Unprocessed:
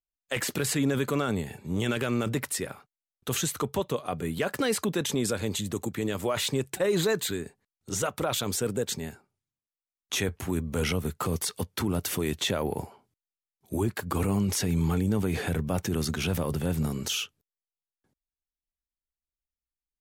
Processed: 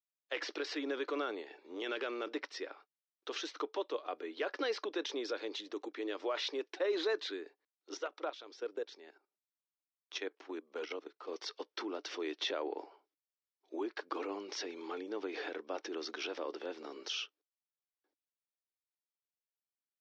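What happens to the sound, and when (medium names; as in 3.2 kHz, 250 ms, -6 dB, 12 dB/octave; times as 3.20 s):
7.97–11.28 s: level held to a coarse grid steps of 14 dB
whole clip: Chebyshev band-pass 300–5600 Hz, order 5; trim -7 dB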